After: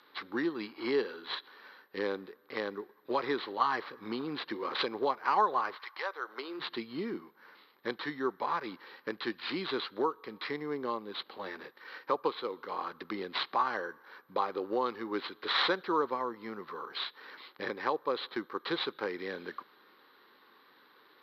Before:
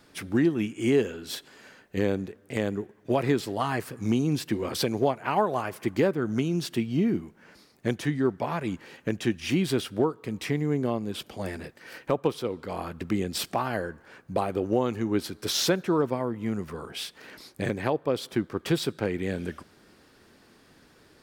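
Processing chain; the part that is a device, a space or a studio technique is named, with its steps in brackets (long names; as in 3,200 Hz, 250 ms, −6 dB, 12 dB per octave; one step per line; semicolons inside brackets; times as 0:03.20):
0:05.73–0:06.59: high-pass filter 1,100 Hz → 300 Hz 24 dB per octave
notch filter 700 Hz, Q 13
toy sound module (linearly interpolated sample-rate reduction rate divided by 6×; switching amplifier with a slow clock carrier 13,000 Hz; loudspeaker in its box 530–4,900 Hz, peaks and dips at 640 Hz −9 dB, 1,100 Hz +6 dB, 2,600 Hz −7 dB, 4,000 Hz +10 dB)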